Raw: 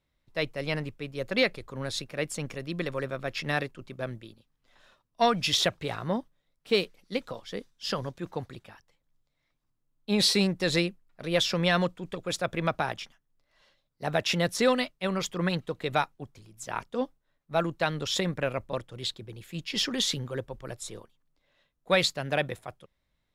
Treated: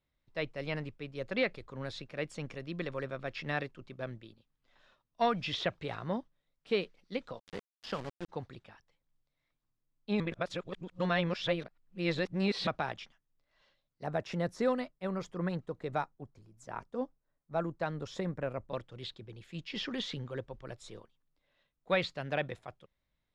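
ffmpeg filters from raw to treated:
ffmpeg -i in.wav -filter_complex "[0:a]asplit=3[link_01][link_02][link_03];[link_01]afade=type=out:start_time=7.38:duration=0.02[link_04];[link_02]aeval=exprs='val(0)*gte(abs(val(0)),0.02)':channel_layout=same,afade=type=in:start_time=7.38:duration=0.02,afade=type=out:start_time=8.28:duration=0.02[link_05];[link_03]afade=type=in:start_time=8.28:duration=0.02[link_06];[link_04][link_05][link_06]amix=inputs=3:normalize=0,asettb=1/sr,asplit=3[link_07][link_08][link_09];[link_07]atrim=end=14.044[link_10];[link_08]atrim=start=14.04:end=18.7,asetpts=PTS-STARTPTS,afade=type=in:duration=0.004:curve=qsin,afade=type=out:start_time=4.656:duration=0.004:curve=qsin,equalizer=frequency=3200:width_type=o:width=1.5:gain=-12.5[link_11];[link_09]atrim=start=18.696[link_12];[link_10][link_11]acrossfade=duration=0.004:curve1=hsin:curve2=qsin[link_13];[link_13][link_12]acrossfade=duration=0.004:curve1=qsin:curve2=hsin,asplit=3[link_14][link_15][link_16];[link_14]atrim=end=10.202[link_17];[link_15]atrim=start=10.198:end=12.672,asetpts=PTS-STARTPTS,areverse[link_18];[link_16]atrim=start=12.668[link_19];[link_17][link_18]acrossfade=duration=0.004:curve1=hsin:curve2=hsin[link_20];[link_20][link_19]acrossfade=duration=0.004:curve1=hsin:curve2=hsin,lowpass=5400,acrossover=split=3400[link_21][link_22];[link_22]acompressor=threshold=-43dB:ratio=4:attack=1:release=60[link_23];[link_21][link_23]amix=inputs=2:normalize=0,volume=-5.5dB" out.wav

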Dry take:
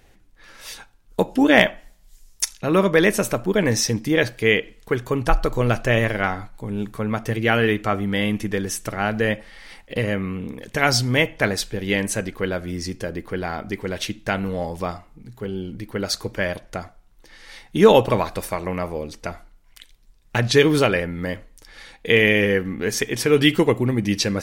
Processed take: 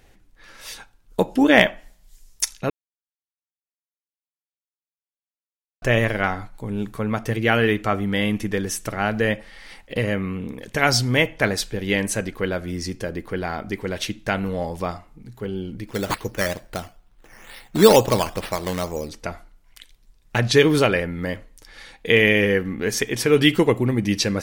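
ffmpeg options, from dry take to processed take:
ffmpeg -i in.wav -filter_complex "[0:a]asettb=1/sr,asplit=3[link_01][link_02][link_03];[link_01]atrim=end=15.874[link_04];[link_02]atrim=start=15.87:end=19.09,asetpts=PTS-STARTPTS,afade=type=in:duration=0.004:curve=qsin,afade=type=out:start_time=3.216:duration=0.004:curve=qsin,acrusher=samples=9:mix=1:aa=0.000001:lfo=1:lforange=5.4:lforate=2.2[link_05];[link_03]atrim=start=19.086[link_06];[link_04][link_05]acrossfade=duration=0.004:curve1=hsin:curve2=qsin[link_07];[link_07][link_06]acrossfade=duration=0.004:curve1=qsin:curve2=hsin,asplit=3[link_08][link_09][link_10];[link_08]atrim=end=2.7,asetpts=PTS-STARTPTS,afade=type=out:start_time=2.696:duration=0.004:curve=hsin[link_11];[link_09]atrim=start=2.7:end=5.82,asetpts=PTS-STARTPTS,volume=0[link_12];[link_10]atrim=start=5.82,asetpts=PTS-STARTPTS,afade=type=in:duration=0.004:curve=hsin[link_13];[link_11][link_12][link_13]concat=n=3:v=0:a=1" out.wav

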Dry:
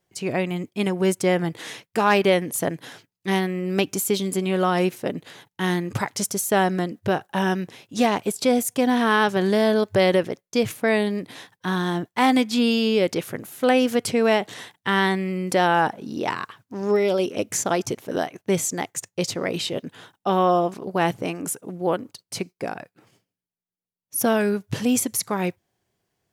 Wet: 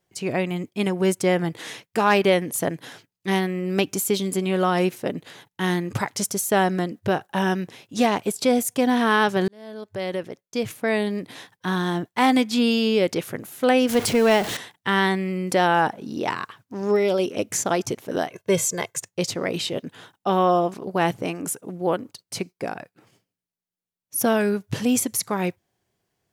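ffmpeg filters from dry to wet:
ffmpeg -i in.wav -filter_complex "[0:a]asettb=1/sr,asplit=3[link_01][link_02][link_03];[link_01]atrim=end=13.894[link_04];[link_02]atrim=start=13.89:end=14.57,asetpts=PTS-STARTPTS,afade=type=in:duration=0.004:curve=qsin,afade=type=out:start_time=0.676:duration=0.004:curve=qsin,aeval=exprs='val(0)+0.5*0.0562*sgn(val(0))':channel_layout=same[link_05];[link_03]atrim=start=14.566[link_06];[link_04][link_05]acrossfade=duration=0.004:curve1=hsin:curve2=qsin[link_07];[link_07][link_06]acrossfade=duration=0.004:curve1=qsin:curve2=hsin,asettb=1/sr,asplit=3[link_08][link_09][link_10];[link_08]atrim=end=18.314[link_11];[link_09]atrim=start=18.31:end=18.98,asetpts=PTS-STARTPTS,afade=type=in:duration=0.004:curve=qsin,afade=type=out:start_time=0.666:duration=0.004:curve=qsin,aecho=1:1:1.9:0.81,atrim=end_sample=29547[link_12];[link_10]atrim=start=18.976[link_13];[link_11][link_12]acrossfade=duration=0.004:curve1=hsin:curve2=qsin[link_14];[link_14][link_13]acrossfade=duration=0.004:curve1=qsin:curve2=hsin,asplit=2[link_15][link_16];[link_15]atrim=end=9.48,asetpts=PTS-STARTPTS,afade=type=out:start_time=9.476:duration=0.004:curve=hsin[link_17];[link_16]atrim=start=9.48,asetpts=PTS-STARTPTS,afade=type=in:duration=1.86[link_18];[link_17][link_18]concat=n=2:v=0:a=1" out.wav

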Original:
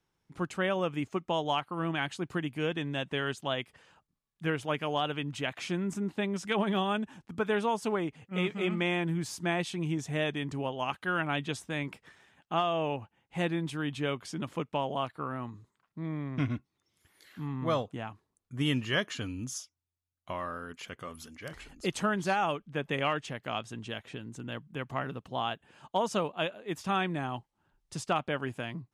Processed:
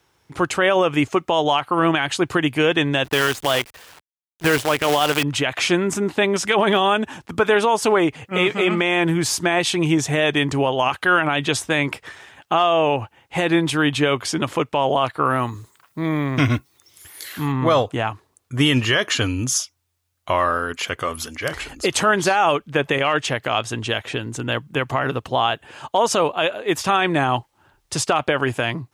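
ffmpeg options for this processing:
ffmpeg -i in.wav -filter_complex "[0:a]asettb=1/sr,asplit=3[link_01][link_02][link_03];[link_01]atrim=end=3.044[link_04];[link_02]atrim=start=3.04:end=5.23,asetpts=PTS-STARTPTS,afade=type=in:duration=0.004:curve=qsin,afade=type=out:start_time=2.186:duration=0.004:curve=qsin,acrusher=bits=7:dc=4:mix=0:aa=0.000001[link_05];[link_03]atrim=start=5.226[link_06];[link_04][link_05]acrossfade=duration=0.004:curve1=hsin:curve2=qsin[link_07];[link_07][link_06]acrossfade=duration=0.004:curve1=qsin:curve2=hsin,asettb=1/sr,asplit=3[link_08][link_09][link_10];[link_08]atrim=end=15.254[link_11];[link_09]atrim=start=15.25:end=17.52,asetpts=PTS-STARTPTS,afade=type=in:duration=0.004:curve=qsin,afade=type=out:start_time=2.266:duration=0.004:curve=qsin,aemphasis=mode=production:type=50kf[link_12];[link_10]atrim=start=17.516[link_13];[link_11][link_12]acrossfade=duration=0.004:curve1=hsin:curve2=qsin[link_14];[link_14][link_13]acrossfade=duration=0.004:curve1=qsin:curve2=hsin,highpass=61,equalizer=frequency=190:width=1.6:gain=-11,alimiter=level_in=25dB:limit=-1dB:release=50:level=0:latency=1,volume=-6.5dB" out.wav

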